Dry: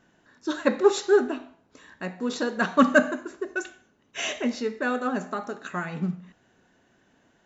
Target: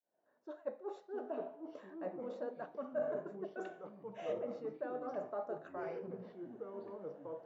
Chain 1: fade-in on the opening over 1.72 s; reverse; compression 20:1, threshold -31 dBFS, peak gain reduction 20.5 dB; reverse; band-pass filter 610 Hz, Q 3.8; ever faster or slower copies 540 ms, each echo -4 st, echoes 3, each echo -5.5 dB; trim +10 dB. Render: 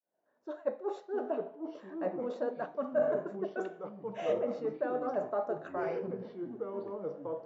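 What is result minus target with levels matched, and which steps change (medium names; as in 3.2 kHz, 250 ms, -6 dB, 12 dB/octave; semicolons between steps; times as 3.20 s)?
compression: peak gain reduction -8 dB
change: compression 20:1, threshold -39.5 dBFS, peak gain reduction 28.5 dB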